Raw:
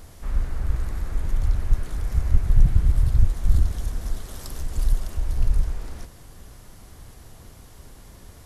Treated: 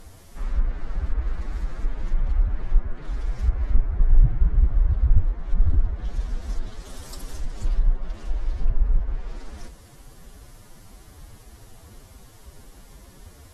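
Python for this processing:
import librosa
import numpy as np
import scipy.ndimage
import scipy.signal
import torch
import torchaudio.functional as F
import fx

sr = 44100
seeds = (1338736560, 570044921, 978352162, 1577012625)

y = fx.env_lowpass_down(x, sr, base_hz=1700.0, full_db=-14.0)
y = fx.stretch_vocoder(y, sr, factor=1.6)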